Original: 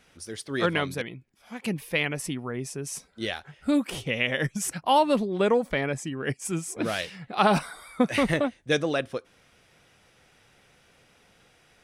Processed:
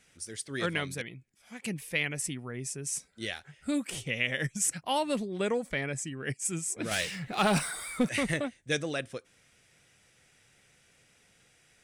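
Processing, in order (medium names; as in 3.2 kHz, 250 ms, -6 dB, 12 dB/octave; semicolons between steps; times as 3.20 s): graphic EQ 125/1000/2000/8000 Hz +4/-4/+5/+12 dB; 6.91–8.09 s: power-law waveshaper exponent 0.7; trim -7.5 dB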